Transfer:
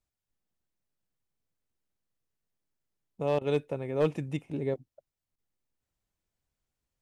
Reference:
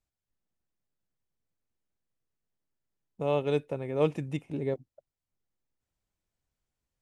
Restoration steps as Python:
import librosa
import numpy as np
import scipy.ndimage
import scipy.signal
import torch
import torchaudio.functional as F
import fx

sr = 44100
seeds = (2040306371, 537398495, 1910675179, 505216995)

y = fx.fix_declip(x, sr, threshold_db=-17.5)
y = fx.fix_interpolate(y, sr, at_s=(3.39, 5.36), length_ms=21.0)